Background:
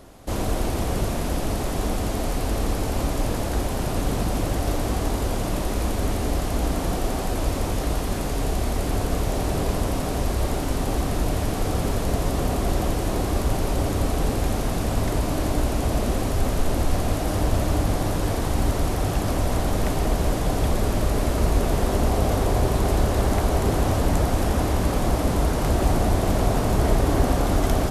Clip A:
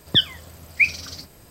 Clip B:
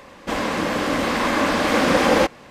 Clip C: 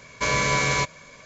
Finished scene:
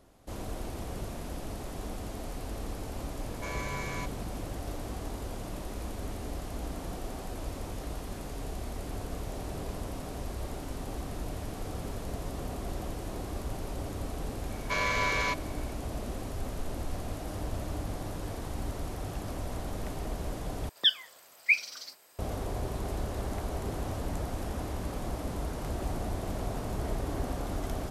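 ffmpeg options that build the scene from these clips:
-filter_complex "[3:a]asplit=2[s0][s1];[0:a]volume=0.211[s2];[s0]equalizer=f=5100:w=0.84:g=-6[s3];[s1]highpass=480,lowpass=4400[s4];[1:a]highpass=640[s5];[s2]asplit=2[s6][s7];[s6]atrim=end=20.694[s8];[s5]atrim=end=1.5,asetpts=PTS-STARTPTS,volume=0.473[s9];[s7]atrim=start=22.186[s10];[s3]atrim=end=1.25,asetpts=PTS-STARTPTS,volume=0.188,afade=t=in:d=0.004:c=hsin,afade=t=out:st=1.246:d=0.004:c=hsin,adelay=141561S[s11];[s4]atrim=end=1.25,asetpts=PTS-STARTPTS,volume=0.531,afade=t=in:d=0.004:c=hsin,afade=t=out:st=1.246:d=0.004:c=hsin,adelay=14490[s12];[s8][s9]acrossfade=d=0.004:c1=hsin:c2=hsin[s13];[s13][s10]acrossfade=d=0.004:c1=hsin:c2=hsin[s14];[s14][s11][s12]amix=inputs=3:normalize=0"

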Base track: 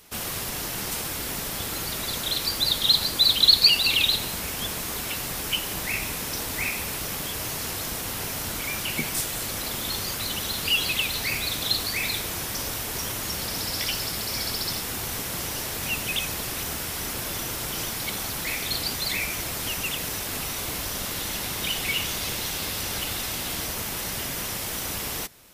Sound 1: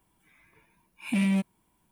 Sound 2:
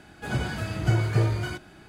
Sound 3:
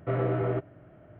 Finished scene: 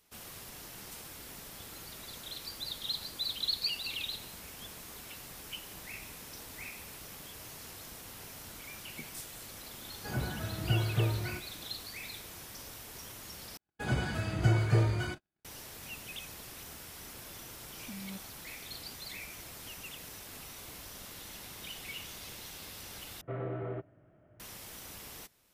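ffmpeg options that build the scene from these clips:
-filter_complex "[2:a]asplit=2[s0][s1];[0:a]volume=0.15[s2];[s0]lowpass=2000[s3];[s1]agate=range=0.01:threshold=0.00562:ratio=16:release=100:detection=peak[s4];[1:a]alimiter=level_in=1.26:limit=0.0631:level=0:latency=1:release=71,volume=0.794[s5];[s2]asplit=3[s6][s7][s8];[s6]atrim=end=13.574[s9];[s4]atrim=end=1.88,asetpts=PTS-STARTPTS,volume=0.668[s10];[s7]atrim=start=15.446:end=23.214[s11];[3:a]atrim=end=1.19,asetpts=PTS-STARTPTS,volume=0.316[s12];[s8]atrim=start=24.396[s13];[s3]atrim=end=1.88,asetpts=PTS-STARTPTS,volume=0.447,afade=t=in:d=0.004:c=hsin,afade=t=out:st=1.876:d=0.004:c=hsin,adelay=9820[s14];[s5]atrim=end=1.91,asetpts=PTS-STARTPTS,volume=0.224,afade=t=in:d=0.004:c=hsin,afade=t=out:st=1.906:d=0.004:c=hsin,adelay=16760[s15];[s9][s10]acrossfade=d=0.004:c1=hsin:c2=hsin[s16];[s16][s11]acrossfade=d=0.004:c1=hsin:c2=hsin[s17];[s17][s12]acrossfade=d=0.004:c1=hsin:c2=hsin[s18];[s18][s13]acrossfade=d=0.004:c1=hsin:c2=hsin[s19];[s19][s14][s15]amix=inputs=3:normalize=0"

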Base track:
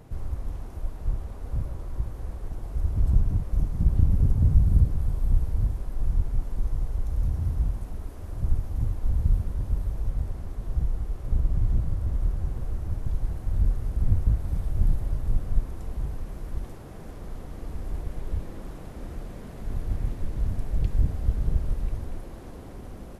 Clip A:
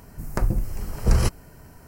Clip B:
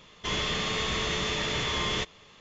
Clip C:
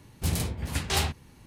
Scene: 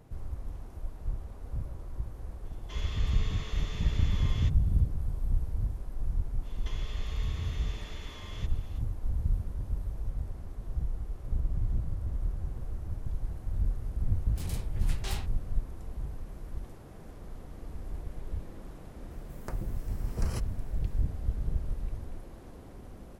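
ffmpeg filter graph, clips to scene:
-filter_complex "[2:a]asplit=2[s0][s1];[0:a]volume=0.473[s2];[s1]acompressor=threshold=0.00631:ratio=6:attack=22:release=86:knee=1:detection=peak[s3];[3:a]asoftclip=type=hard:threshold=0.0841[s4];[s0]atrim=end=2.4,asetpts=PTS-STARTPTS,volume=0.168,afade=t=in:d=0.004:c=hsin,afade=t=out:st=2.396:d=0.004:c=hsin,adelay=2450[s5];[s3]atrim=end=2.4,asetpts=PTS-STARTPTS,volume=0.531,afade=t=in:d=0.05,afade=t=out:st=2.35:d=0.05,adelay=283122S[s6];[s4]atrim=end=1.46,asetpts=PTS-STARTPTS,volume=0.266,afade=t=in:d=0.004:c=hsin,afade=t=out:st=1.456:d=0.004:c=hsin,adelay=14140[s7];[1:a]atrim=end=1.87,asetpts=PTS-STARTPTS,volume=0.211,afade=t=in:d=0.004:c=hsin,afade=t=out:st=1.866:d=0.004:c=hsin,adelay=19110[s8];[s2][s5][s6][s7][s8]amix=inputs=5:normalize=0"

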